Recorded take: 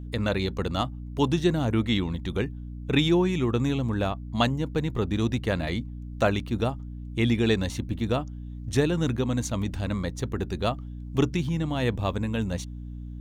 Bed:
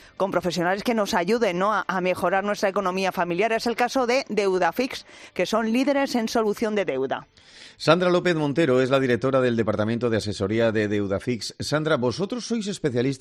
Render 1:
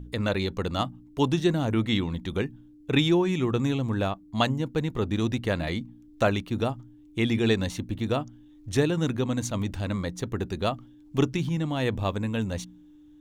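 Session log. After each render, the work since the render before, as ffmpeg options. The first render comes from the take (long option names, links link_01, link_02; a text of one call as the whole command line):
ffmpeg -i in.wav -af "bandreject=frequency=60:width_type=h:width=4,bandreject=frequency=120:width_type=h:width=4,bandreject=frequency=180:width_type=h:width=4,bandreject=frequency=240:width_type=h:width=4" out.wav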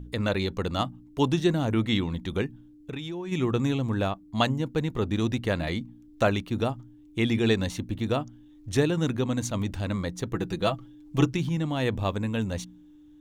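ffmpeg -i in.wav -filter_complex "[0:a]asplit=3[link_01][link_02][link_03];[link_01]afade=type=out:start_time=2.46:duration=0.02[link_04];[link_02]acompressor=threshold=-31dB:ratio=10:attack=3.2:release=140:knee=1:detection=peak,afade=type=in:start_time=2.46:duration=0.02,afade=type=out:start_time=3.31:duration=0.02[link_05];[link_03]afade=type=in:start_time=3.31:duration=0.02[link_06];[link_04][link_05][link_06]amix=inputs=3:normalize=0,asettb=1/sr,asplit=3[link_07][link_08][link_09];[link_07]atrim=end=10.334[link_10];[link_08]atrim=start=10.33:end=11.31,asetpts=PTS-STARTPTS,afade=type=in:duration=0.004:curve=qsin,afade=type=out:start_time=0.976:duration=0.004:curve=qsin,aecho=1:1:6.1:0.65,atrim=end_sample=43218[link_11];[link_09]atrim=start=11.306[link_12];[link_10][link_11]acrossfade=duration=0.004:curve1=hsin:curve2=qsin[link_13];[link_13][link_12]acrossfade=duration=0.004:curve1=qsin:curve2=hsin" out.wav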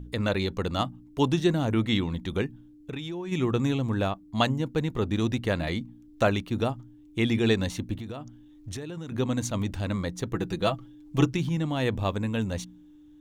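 ffmpeg -i in.wav -filter_complex "[0:a]asettb=1/sr,asplit=3[link_01][link_02][link_03];[link_01]atrim=end=7.954[link_04];[link_02]atrim=start=7.95:end=9.12,asetpts=PTS-STARTPTS,afade=type=in:duration=0.004:curve=qsin,afade=type=out:start_time=1.166:duration=0.004:curve=qsin,acompressor=threshold=-33dB:ratio=8:attack=3.2:release=140:knee=1:detection=peak[link_05];[link_03]atrim=start=9.116[link_06];[link_04][link_05]acrossfade=duration=0.004:curve1=hsin:curve2=qsin[link_07];[link_07][link_06]acrossfade=duration=0.004:curve1=qsin:curve2=hsin" out.wav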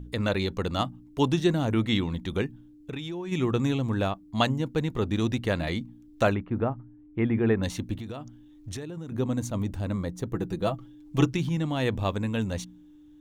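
ffmpeg -i in.wav -filter_complex "[0:a]asplit=3[link_01][link_02][link_03];[link_01]afade=type=out:start_time=6.33:duration=0.02[link_04];[link_02]lowpass=frequency=1900:width=0.5412,lowpass=frequency=1900:width=1.3066,afade=type=in:start_time=6.33:duration=0.02,afade=type=out:start_time=7.62:duration=0.02[link_05];[link_03]afade=type=in:start_time=7.62:duration=0.02[link_06];[link_04][link_05][link_06]amix=inputs=3:normalize=0,asettb=1/sr,asplit=3[link_07][link_08][link_09];[link_07]atrim=end=8.854[link_10];[link_08]atrim=start=8.85:end=10.79,asetpts=PTS-STARTPTS,afade=type=in:duration=0.004:curve=qsin,afade=type=out:start_time=1.936:duration=0.004:curve=qsin,equalizer=frequency=3300:width=0.42:gain=-8[link_11];[link_09]atrim=start=10.786[link_12];[link_10][link_11]acrossfade=duration=0.004:curve1=hsin:curve2=qsin[link_13];[link_13][link_12]acrossfade=duration=0.004:curve1=qsin:curve2=hsin" out.wav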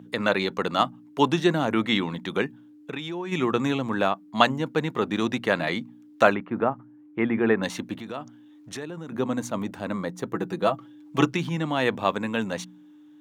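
ffmpeg -i in.wav -af "highpass=frequency=150:width=0.5412,highpass=frequency=150:width=1.3066,equalizer=frequency=1300:width=0.5:gain=8.5" out.wav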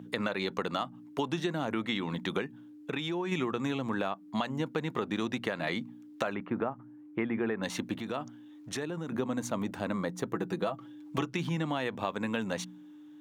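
ffmpeg -i in.wav -af "alimiter=limit=-12dB:level=0:latency=1:release=177,acompressor=threshold=-28dB:ratio=6" out.wav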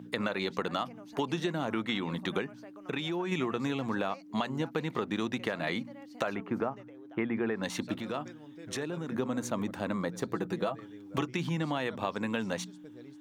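ffmpeg -i in.wav -i bed.wav -filter_complex "[1:a]volume=-29dB[link_01];[0:a][link_01]amix=inputs=2:normalize=0" out.wav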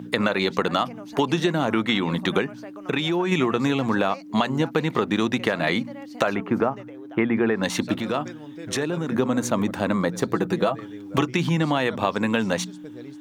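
ffmpeg -i in.wav -af "volume=10dB" out.wav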